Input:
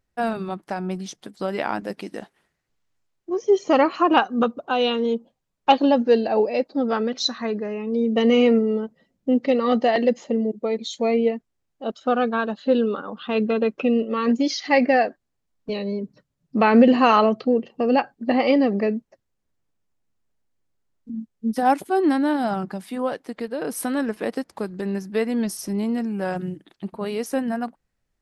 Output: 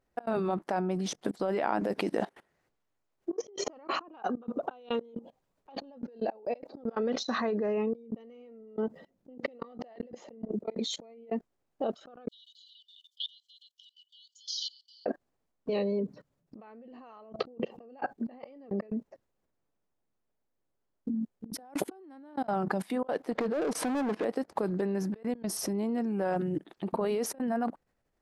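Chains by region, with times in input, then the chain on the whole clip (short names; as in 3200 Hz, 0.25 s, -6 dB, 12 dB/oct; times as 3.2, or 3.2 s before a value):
12.28–15.06 compressor 5:1, threshold -26 dBFS + brick-wall FIR high-pass 2900 Hz
23.31–24.25 LPF 5500 Hz + hard clip -29 dBFS
whole clip: level quantiser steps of 22 dB; bell 570 Hz +10 dB 3 oct; negative-ratio compressor -36 dBFS, ratio -1; gain -3.5 dB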